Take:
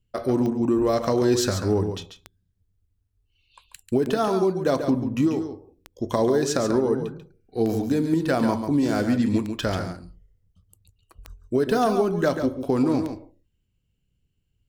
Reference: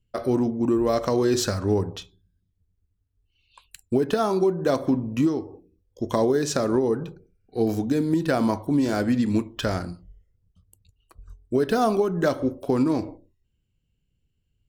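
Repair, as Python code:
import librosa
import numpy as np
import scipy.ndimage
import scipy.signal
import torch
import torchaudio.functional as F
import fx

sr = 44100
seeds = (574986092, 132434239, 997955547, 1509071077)

y = fx.fix_declick_ar(x, sr, threshold=10.0)
y = fx.fix_echo_inverse(y, sr, delay_ms=140, level_db=-8.0)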